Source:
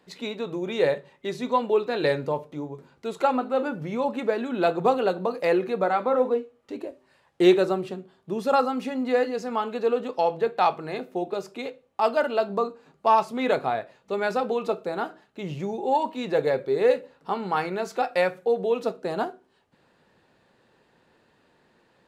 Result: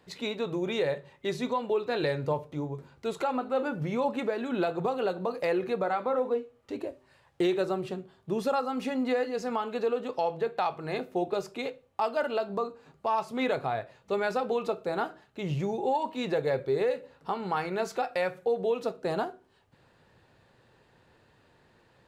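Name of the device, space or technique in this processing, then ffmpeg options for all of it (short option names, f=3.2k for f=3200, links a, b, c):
car stereo with a boomy subwoofer: -af "lowshelf=f=150:t=q:w=1.5:g=6.5,alimiter=limit=-19dB:level=0:latency=1:release=246"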